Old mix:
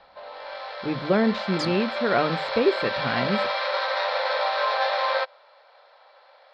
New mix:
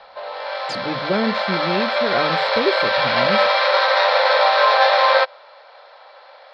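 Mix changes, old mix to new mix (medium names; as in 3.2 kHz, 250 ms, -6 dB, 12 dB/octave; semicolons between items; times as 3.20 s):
first sound +9.5 dB; second sound: entry -0.90 s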